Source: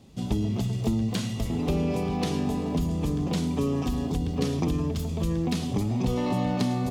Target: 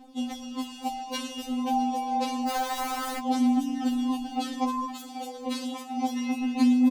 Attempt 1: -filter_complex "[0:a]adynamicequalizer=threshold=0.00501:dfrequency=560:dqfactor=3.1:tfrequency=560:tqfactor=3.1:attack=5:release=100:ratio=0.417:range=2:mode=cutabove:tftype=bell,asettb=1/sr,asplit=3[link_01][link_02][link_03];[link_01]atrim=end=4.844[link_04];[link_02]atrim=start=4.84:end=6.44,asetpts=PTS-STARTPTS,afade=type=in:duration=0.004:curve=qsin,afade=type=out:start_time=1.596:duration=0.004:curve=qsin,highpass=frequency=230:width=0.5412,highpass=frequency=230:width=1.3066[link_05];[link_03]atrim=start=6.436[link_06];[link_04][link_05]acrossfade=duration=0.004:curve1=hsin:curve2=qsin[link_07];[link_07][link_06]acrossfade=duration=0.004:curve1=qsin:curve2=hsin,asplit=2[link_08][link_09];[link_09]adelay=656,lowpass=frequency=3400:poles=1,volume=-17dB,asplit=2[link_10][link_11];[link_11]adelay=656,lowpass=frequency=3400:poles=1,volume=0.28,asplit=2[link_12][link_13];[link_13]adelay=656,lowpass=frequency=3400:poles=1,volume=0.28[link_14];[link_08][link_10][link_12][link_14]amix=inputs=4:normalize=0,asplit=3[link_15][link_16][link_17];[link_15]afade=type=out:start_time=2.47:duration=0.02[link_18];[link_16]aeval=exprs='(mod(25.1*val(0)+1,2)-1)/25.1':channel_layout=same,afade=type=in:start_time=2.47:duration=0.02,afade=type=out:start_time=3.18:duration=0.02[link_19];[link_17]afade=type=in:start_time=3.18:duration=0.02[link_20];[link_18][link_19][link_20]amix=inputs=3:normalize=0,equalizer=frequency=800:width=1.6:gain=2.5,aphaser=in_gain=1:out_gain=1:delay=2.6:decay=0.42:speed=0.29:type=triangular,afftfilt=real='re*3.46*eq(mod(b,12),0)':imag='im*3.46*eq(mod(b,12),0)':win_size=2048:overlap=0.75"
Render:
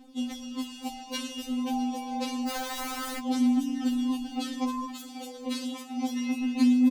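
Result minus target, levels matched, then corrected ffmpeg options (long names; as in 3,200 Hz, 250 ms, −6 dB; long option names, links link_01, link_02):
1,000 Hz band −6.0 dB
-filter_complex "[0:a]adynamicequalizer=threshold=0.00501:dfrequency=560:dqfactor=3.1:tfrequency=560:tqfactor=3.1:attack=5:release=100:ratio=0.417:range=2:mode=cutabove:tftype=bell,asettb=1/sr,asplit=3[link_01][link_02][link_03];[link_01]atrim=end=4.844[link_04];[link_02]atrim=start=4.84:end=6.44,asetpts=PTS-STARTPTS,afade=type=in:duration=0.004:curve=qsin,afade=type=out:start_time=1.596:duration=0.004:curve=qsin,highpass=frequency=230:width=0.5412,highpass=frequency=230:width=1.3066[link_05];[link_03]atrim=start=6.436[link_06];[link_04][link_05]acrossfade=duration=0.004:curve1=hsin:curve2=qsin[link_07];[link_07][link_06]acrossfade=duration=0.004:curve1=qsin:curve2=hsin,asplit=2[link_08][link_09];[link_09]adelay=656,lowpass=frequency=3400:poles=1,volume=-17dB,asplit=2[link_10][link_11];[link_11]adelay=656,lowpass=frequency=3400:poles=1,volume=0.28,asplit=2[link_12][link_13];[link_13]adelay=656,lowpass=frequency=3400:poles=1,volume=0.28[link_14];[link_08][link_10][link_12][link_14]amix=inputs=4:normalize=0,asplit=3[link_15][link_16][link_17];[link_15]afade=type=out:start_time=2.47:duration=0.02[link_18];[link_16]aeval=exprs='(mod(25.1*val(0)+1,2)-1)/25.1':channel_layout=same,afade=type=in:start_time=2.47:duration=0.02,afade=type=out:start_time=3.18:duration=0.02[link_19];[link_17]afade=type=in:start_time=3.18:duration=0.02[link_20];[link_18][link_19][link_20]amix=inputs=3:normalize=0,equalizer=frequency=800:width=1.6:gain=11,aphaser=in_gain=1:out_gain=1:delay=2.6:decay=0.42:speed=0.29:type=triangular,afftfilt=real='re*3.46*eq(mod(b,12),0)':imag='im*3.46*eq(mod(b,12),0)':win_size=2048:overlap=0.75"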